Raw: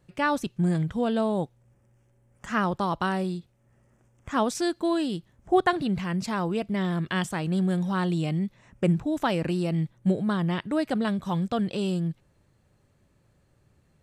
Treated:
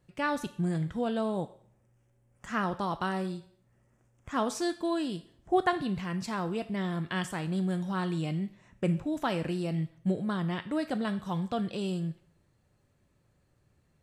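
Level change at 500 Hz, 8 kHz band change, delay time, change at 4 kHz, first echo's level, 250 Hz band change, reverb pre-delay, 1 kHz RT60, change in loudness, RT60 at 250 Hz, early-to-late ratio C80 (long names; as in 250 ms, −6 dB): −5.0 dB, −4.0 dB, no echo audible, −4.5 dB, no echo audible, −5.0 dB, 3 ms, 0.60 s, −5.0 dB, 0.80 s, 18.0 dB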